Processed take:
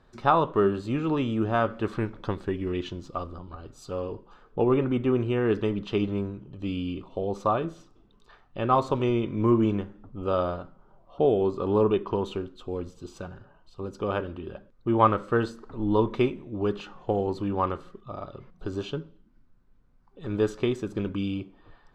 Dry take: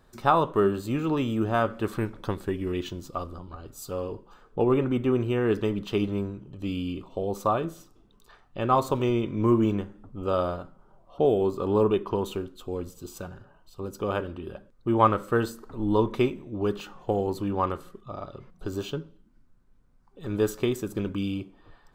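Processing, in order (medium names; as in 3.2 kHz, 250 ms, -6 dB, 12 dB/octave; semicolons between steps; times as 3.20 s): low-pass 4.8 kHz 12 dB/octave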